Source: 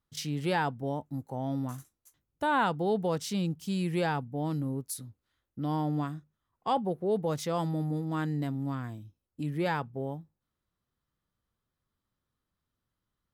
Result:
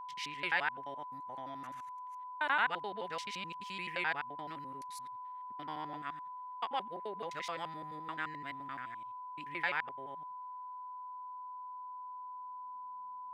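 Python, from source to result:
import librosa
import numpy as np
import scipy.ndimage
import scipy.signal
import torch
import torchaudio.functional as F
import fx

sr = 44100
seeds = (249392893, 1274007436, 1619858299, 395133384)

y = fx.local_reverse(x, sr, ms=86.0)
y = fx.filter_sweep_bandpass(y, sr, from_hz=2100.0, to_hz=200.0, start_s=10.38, end_s=13.01, q=2.5)
y = y + 10.0 ** (-50.0 / 20.0) * np.sin(2.0 * np.pi * 1000.0 * np.arange(len(y)) / sr)
y = y * 10.0 ** (7.0 / 20.0)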